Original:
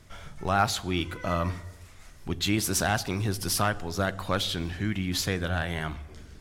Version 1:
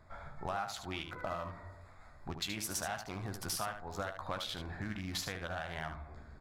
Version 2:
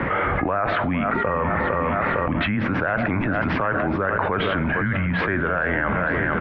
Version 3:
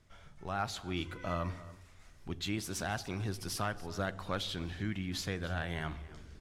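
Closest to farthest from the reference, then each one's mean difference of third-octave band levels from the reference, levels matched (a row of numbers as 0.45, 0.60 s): 3, 1, 2; 2.5, 5.0, 14.0 dB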